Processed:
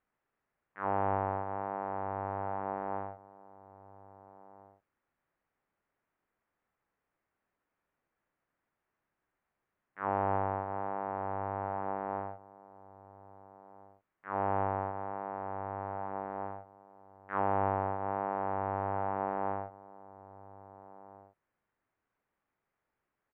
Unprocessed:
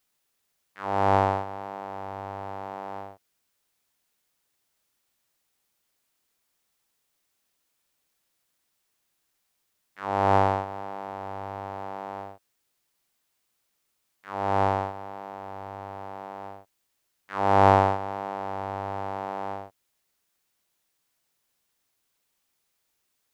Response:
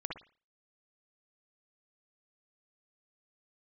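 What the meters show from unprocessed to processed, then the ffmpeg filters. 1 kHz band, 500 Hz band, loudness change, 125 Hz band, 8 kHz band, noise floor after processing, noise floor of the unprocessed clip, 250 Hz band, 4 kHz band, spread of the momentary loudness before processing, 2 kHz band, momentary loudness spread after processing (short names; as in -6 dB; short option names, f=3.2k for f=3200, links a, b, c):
-7.0 dB, -7.0 dB, -8.0 dB, -8.0 dB, n/a, under -85 dBFS, -76 dBFS, -6.5 dB, under -20 dB, 17 LU, -8.0 dB, 22 LU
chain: -filter_complex "[0:a]lowpass=f=1.9k:w=0.5412,lowpass=f=1.9k:w=1.3066,acompressor=threshold=-26dB:ratio=6,asplit=2[a][b];[b]adelay=1633,volume=-17dB,highshelf=f=4k:g=-36.7[c];[a][c]amix=inputs=2:normalize=0"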